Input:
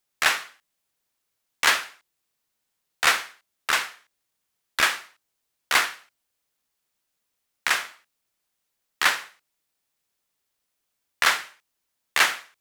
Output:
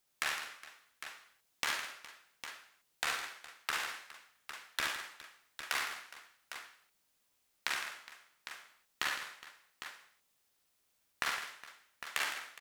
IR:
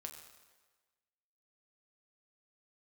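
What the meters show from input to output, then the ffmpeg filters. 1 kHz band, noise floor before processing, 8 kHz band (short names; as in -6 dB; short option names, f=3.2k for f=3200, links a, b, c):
-13.5 dB, -79 dBFS, -13.0 dB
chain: -filter_complex "[0:a]acompressor=threshold=-35dB:ratio=6,asplit=2[a][b];[b]aecho=0:1:55|70|160|213|414|805:0.447|0.501|0.266|0.141|0.133|0.299[c];[a][c]amix=inputs=2:normalize=0"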